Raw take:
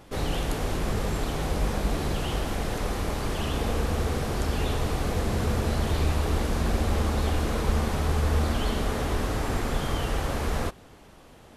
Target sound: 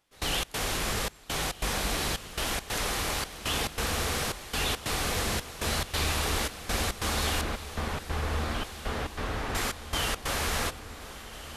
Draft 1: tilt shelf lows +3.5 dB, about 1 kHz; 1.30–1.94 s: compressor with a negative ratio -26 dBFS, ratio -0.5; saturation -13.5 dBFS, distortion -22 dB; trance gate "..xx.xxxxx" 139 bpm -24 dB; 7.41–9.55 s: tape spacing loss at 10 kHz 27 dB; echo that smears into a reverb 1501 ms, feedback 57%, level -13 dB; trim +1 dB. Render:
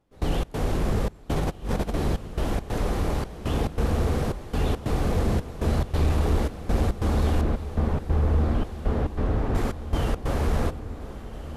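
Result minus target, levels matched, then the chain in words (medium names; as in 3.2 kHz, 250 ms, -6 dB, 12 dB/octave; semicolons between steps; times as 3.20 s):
1 kHz band -3.5 dB
tilt shelf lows -8 dB, about 1 kHz; 1.30–1.94 s: compressor with a negative ratio -26 dBFS, ratio -0.5; saturation -13.5 dBFS, distortion -35 dB; trance gate "..xx.xxxxx" 139 bpm -24 dB; 7.41–9.55 s: tape spacing loss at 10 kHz 27 dB; echo that smears into a reverb 1501 ms, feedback 57%, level -13 dB; trim +1 dB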